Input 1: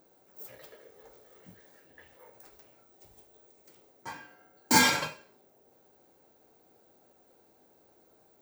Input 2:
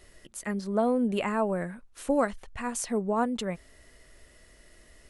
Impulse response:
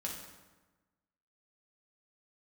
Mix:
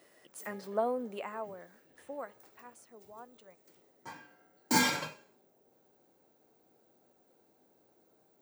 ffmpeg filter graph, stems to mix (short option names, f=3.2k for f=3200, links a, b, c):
-filter_complex "[0:a]highpass=160,volume=-6dB[a];[1:a]highpass=660,tiltshelf=f=1.2k:g=5,volume=-3.5dB,afade=t=out:st=0.76:d=0.77:silence=0.251189,afade=t=out:st=2.48:d=0.39:silence=0.446684[b];[a][b]amix=inputs=2:normalize=0,lowshelf=f=240:g=8.5,bandreject=f=416.6:t=h:w=4,bandreject=f=833.2:t=h:w=4,bandreject=f=1.2498k:t=h:w=4,bandreject=f=1.6664k:t=h:w=4,bandreject=f=2.083k:t=h:w=4,bandreject=f=2.4996k:t=h:w=4,bandreject=f=2.9162k:t=h:w=4,bandreject=f=3.3328k:t=h:w=4,bandreject=f=3.7494k:t=h:w=4,bandreject=f=4.166k:t=h:w=4,bandreject=f=4.5826k:t=h:w=4,bandreject=f=4.9992k:t=h:w=4,bandreject=f=5.4158k:t=h:w=4,bandreject=f=5.8324k:t=h:w=4,bandreject=f=6.249k:t=h:w=4,bandreject=f=6.6656k:t=h:w=4,bandreject=f=7.0822k:t=h:w=4,bandreject=f=7.4988k:t=h:w=4,bandreject=f=7.9154k:t=h:w=4,bandreject=f=8.332k:t=h:w=4,bandreject=f=8.7486k:t=h:w=4,bandreject=f=9.1652k:t=h:w=4,bandreject=f=9.5818k:t=h:w=4,bandreject=f=9.9984k:t=h:w=4,bandreject=f=10.415k:t=h:w=4,bandreject=f=10.8316k:t=h:w=4,bandreject=f=11.2482k:t=h:w=4,bandreject=f=11.6648k:t=h:w=4,bandreject=f=12.0814k:t=h:w=4,bandreject=f=12.498k:t=h:w=4,bandreject=f=12.9146k:t=h:w=4,bandreject=f=13.3312k:t=h:w=4,bandreject=f=13.7478k:t=h:w=4,bandreject=f=14.1644k:t=h:w=4,bandreject=f=14.581k:t=h:w=4,bandreject=f=14.9976k:t=h:w=4"